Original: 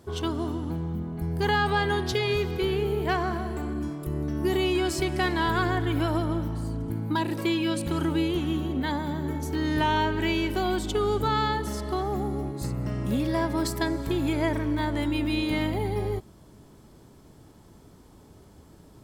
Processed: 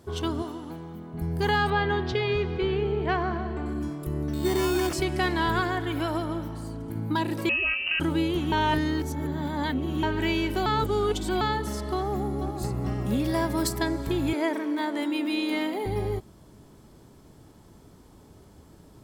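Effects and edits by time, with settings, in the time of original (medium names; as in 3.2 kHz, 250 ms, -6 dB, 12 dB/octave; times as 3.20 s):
0.42–1.14 s: high-pass 470 Hz 6 dB/octave
1.70–3.66 s: low-pass 3.4 kHz
4.33–4.93 s: sample-rate reducer 4 kHz
5.60–6.96 s: bass shelf 220 Hz -7.5 dB
7.49–8.00 s: frequency inversion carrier 2.9 kHz
8.52–10.03 s: reverse
10.66–11.41 s: reverse
11.98–12.54 s: echo throw 430 ms, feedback 55%, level -6.5 dB
13.24–13.69 s: treble shelf 7.6 kHz +10 dB
14.33–15.86 s: steep high-pass 240 Hz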